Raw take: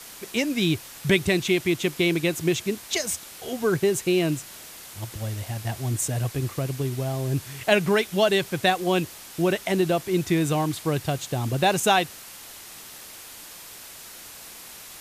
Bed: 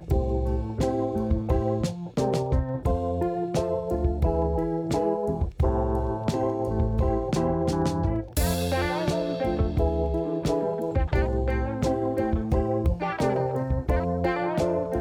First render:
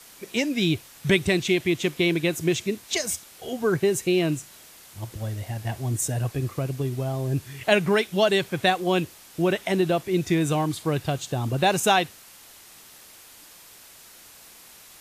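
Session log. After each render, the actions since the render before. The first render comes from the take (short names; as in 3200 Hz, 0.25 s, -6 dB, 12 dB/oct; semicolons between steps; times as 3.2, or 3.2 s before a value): noise print and reduce 6 dB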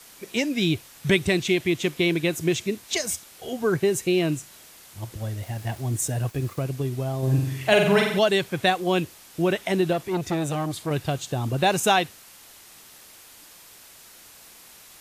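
5.42–6.64 sample gate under -44 dBFS; 7.18–8.19 flutter echo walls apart 7.8 m, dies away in 0.75 s; 9.93–10.91 core saturation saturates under 720 Hz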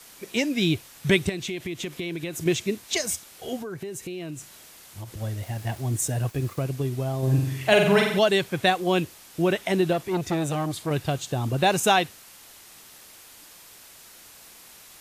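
1.29–2.46 compressor, threshold -28 dBFS; 3.57–5.17 compressor, threshold -32 dBFS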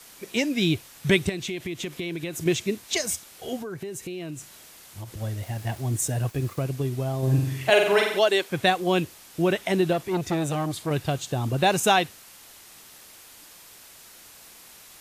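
7.7–8.5 HPF 290 Hz 24 dB/oct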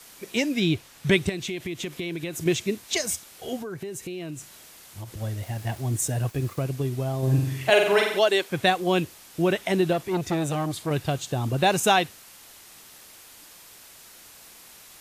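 0.59–1.27 LPF 4600 Hz -> 9600 Hz 6 dB/oct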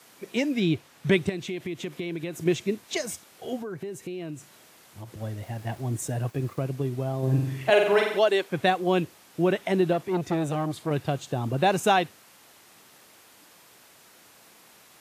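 HPF 120 Hz; high shelf 2600 Hz -8.5 dB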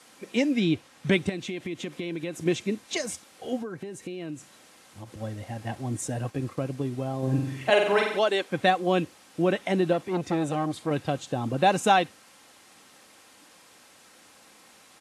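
LPF 11000 Hz 24 dB/oct; comb 3.8 ms, depth 34%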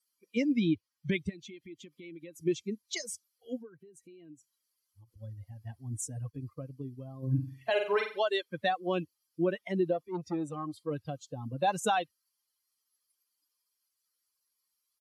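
per-bin expansion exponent 2; limiter -19 dBFS, peak gain reduction 9 dB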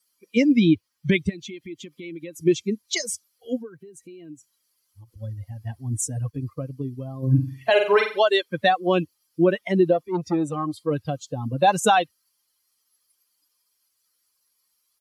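gain +10.5 dB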